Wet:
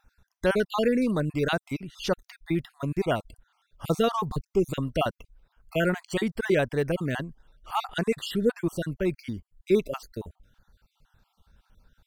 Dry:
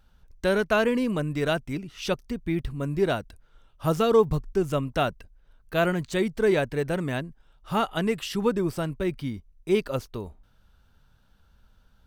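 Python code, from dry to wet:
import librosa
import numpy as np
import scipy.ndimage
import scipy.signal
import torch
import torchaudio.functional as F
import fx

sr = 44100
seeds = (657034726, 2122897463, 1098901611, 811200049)

y = fx.spec_dropout(x, sr, seeds[0], share_pct=40)
y = F.gain(torch.from_numpy(y), 1.0).numpy()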